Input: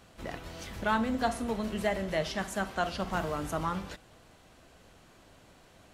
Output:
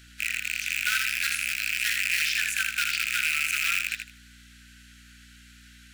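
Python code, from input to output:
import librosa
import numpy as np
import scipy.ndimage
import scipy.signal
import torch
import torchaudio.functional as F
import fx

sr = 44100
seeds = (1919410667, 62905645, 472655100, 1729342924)

p1 = fx.rattle_buzz(x, sr, strikes_db=-43.0, level_db=-19.0)
p2 = (np.mod(10.0 ** (22.5 / 20.0) * p1 + 1.0, 2.0) - 1.0) / 10.0 ** (22.5 / 20.0)
p3 = p1 + (p2 * librosa.db_to_amplitude(-3.5))
p4 = scipy.signal.sosfilt(scipy.signal.butter(16, 1400.0, 'highpass', fs=sr, output='sos'), p3)
p5 = fx.add_hum(p4, sr, base_hz=60, snr_db=23)
p6 = fx.echo_feedback(p5, sr, ms=79, feedback_pct=21, wet_db=-6)
y = p6 * librosa.db_to_amplitude(4.0)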